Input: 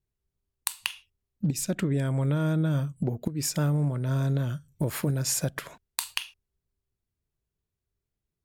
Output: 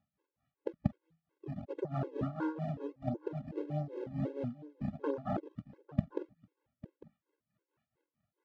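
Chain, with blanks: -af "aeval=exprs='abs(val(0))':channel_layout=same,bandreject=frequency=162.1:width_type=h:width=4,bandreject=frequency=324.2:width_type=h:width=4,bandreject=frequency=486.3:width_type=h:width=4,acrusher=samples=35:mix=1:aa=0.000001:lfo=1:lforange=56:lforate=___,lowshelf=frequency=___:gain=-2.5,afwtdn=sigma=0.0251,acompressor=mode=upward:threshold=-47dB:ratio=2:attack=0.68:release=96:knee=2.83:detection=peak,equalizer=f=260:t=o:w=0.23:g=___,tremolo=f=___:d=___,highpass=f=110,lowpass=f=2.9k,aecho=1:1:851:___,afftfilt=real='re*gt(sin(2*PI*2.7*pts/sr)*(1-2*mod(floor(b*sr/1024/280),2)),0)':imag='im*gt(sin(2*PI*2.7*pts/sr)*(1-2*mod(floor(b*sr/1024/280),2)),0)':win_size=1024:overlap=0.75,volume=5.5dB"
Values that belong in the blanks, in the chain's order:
1.5, 170, -2, 4.5, 0.85, 0.133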